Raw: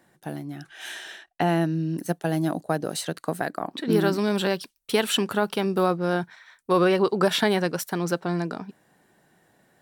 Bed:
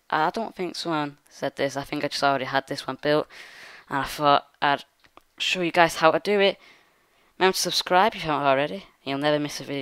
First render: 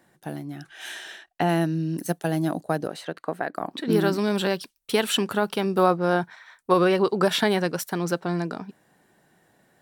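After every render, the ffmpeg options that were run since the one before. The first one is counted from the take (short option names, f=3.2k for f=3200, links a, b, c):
-filter_complex "[0:a]asettb=1/sr,asplit=3[a][b][c];[a]atrim=end=1.494[d];[b]atrim=start=1.49:end=2.28,asetpts=PTS-STARTPTS,afade=t=in:d=0.004:c=qsin,afade=t=out:st=0.786:d=0.004:c=qsin,highshelf=f=4.2k:g=5[e];[c]atrim=start=2.276[f];[d][e]acrossfade=d=0.004:c1=hsin:c2=qsin[g];[g][f]acrossfade=d=0.004:c1=qsin:c2=hsin,asettb=1/sr,asplit=3[h][i][j];[h]atrim=end=2.874[k];[i]atrim=start=2.87:end=3.55,asetpts=PTS-STARTPTS,afade=t=in:d=0.004:c=qsin,afade=t=out:st=0.676:d=0.004:c=qsin,bass=f=250:g=-8,treble=f=4k:g=-15[l];[j]atrim=start=3.546[m];[k][l]acrossfade=d=0.004:c1=hsin:c2=qsin[n];[n][m]acrossfade=d=0.004:c1=qsin:c2=hsin,asettb=1/sr,asplit=3[o][p][q];[o]atrim=end=5.784[r];[p]atrim=start=5.78:end=6.74,asetpts=PTS-STARTPTS,afade=t=in:d=0.004:c=qsin,afade=t=out:st=0.956:d=0.004:c=qsin,equalizer=f=870:w=0.75:g=5[s];[q]atrim=start=6.736[t];[r][s]acrossfade=d=0.004:c1=hsin:c2=qsin[u];[u][t]acrossfade=d=0.004:c1=qsin:c2=hsin"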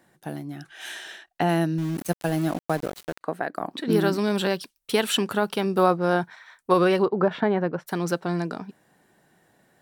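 -filter_complex "[0:a]asettb=1/sr,asplit=3[a][b][c];[a]atrim=end=1.784[d];[b]atrim=start=1.78:end=3.21,asetpts=PTS-STARTPTS,afade=t=in:d=0.004:c=qsin,afade=t=out:st=1.426:d=0.004:c=qsin,aeval=exprs='val(0)*gte(abs(val(0)),0.02)':c=same[e];[c]atrim=start=3.206[f];[d][e]acrossfade=d=0.004:c1=hsin:c2=qsin[g];[g][f]acrossfade=d=0.004:c1=qsin:c2=hsin,asplit=3[h][i][j];[h]afade=t=out:st=7.04:d=0.02[k];[i]lowpass=1.4k,afade=t=in:st=7.04:d=0.02,afade=t=out:st=7.86:d=0.02[l];[j]afade=t=in:st=7.86:d=0.02[m];[k][l][m]amix=inputs=3:normalize=0"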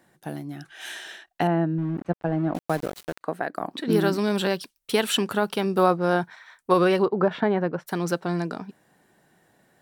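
-filter_complex "[0:a]asettb=1/sr,asplit=3[a][b][c];[a]atrim=end=1.474[d];[b]atrim=start=1.47:end=2.55,asetpts=PTS-STARTPTS,afade=t=in:d=0.004:c=qsin,afade=t=out:st=1.076:d=0.004:c=qsin,lowpass=1.4k[e];[c]atrim=start=2.546[f];[d][e]acrossfade=d=0.004:c1=hsin:c2=qsin[g];[g][f]acrossfade=d=0.004:c1=qsin:c2=hsin"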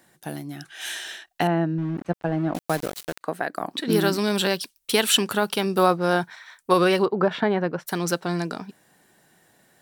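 -af "highshelf=f=2.4k:g=8.5"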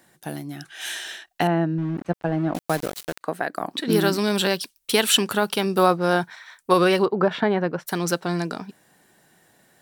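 -af "volume=1dB"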